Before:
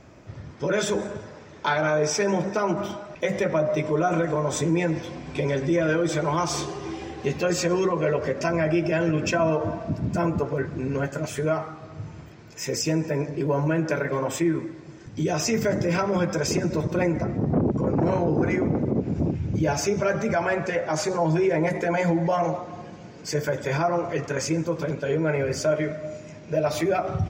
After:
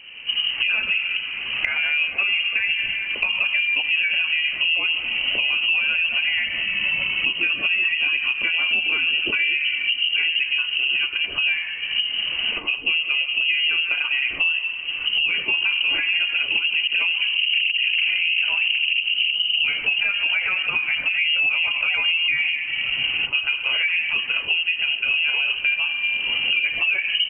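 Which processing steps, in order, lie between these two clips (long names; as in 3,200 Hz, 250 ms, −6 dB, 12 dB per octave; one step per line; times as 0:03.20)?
camcorder AGC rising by 30 dB per second
voice inversion scrambler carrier 3,000 Hz
downward compressor 6 to 1, threshold −23 dBFS, peak gain reduction 7 dB
flat-topped bell 810 Hz −8 dB 2.4 octaves
level +6 dB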